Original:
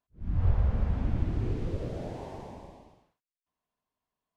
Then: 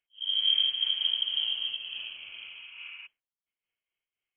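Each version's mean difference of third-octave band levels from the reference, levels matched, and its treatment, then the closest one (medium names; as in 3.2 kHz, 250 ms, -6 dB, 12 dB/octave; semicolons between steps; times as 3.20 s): 18.5 dB: spectral replace 2.38–3.04 s, 230–2300 Hz before; frequency inversion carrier 3.2 kHz; random flutter of the level, depth 65%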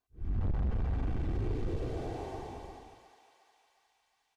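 3.5 dB: comb 2.6 ms, depth 54%; saturation -27.5 dBFS, distortion -7 dB; on a send: thinning echo 358 ms, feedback 71%, high-pass 860 Hz, level -9 dB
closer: second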